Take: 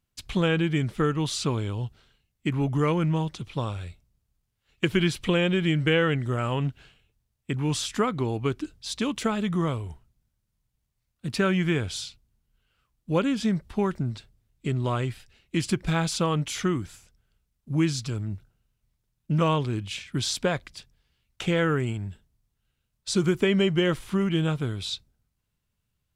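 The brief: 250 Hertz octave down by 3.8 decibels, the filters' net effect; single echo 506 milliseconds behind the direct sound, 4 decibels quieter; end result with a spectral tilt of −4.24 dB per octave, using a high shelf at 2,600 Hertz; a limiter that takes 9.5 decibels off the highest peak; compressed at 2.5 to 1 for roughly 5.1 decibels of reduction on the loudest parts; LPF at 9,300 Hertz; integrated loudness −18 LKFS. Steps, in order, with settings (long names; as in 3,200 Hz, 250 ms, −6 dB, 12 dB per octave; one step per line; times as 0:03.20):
low-pass filter 9,300 Hz
parametric band 250 Hz −6.5 dB
high-shelf EQ 2,600 Hz +7.5 dB
downward compressor 2.5 to 1, threshold −27 dBFS
brickwall limiter −20.5 dBFS
single-tap delay 506 ms −4 dB
level +13 dB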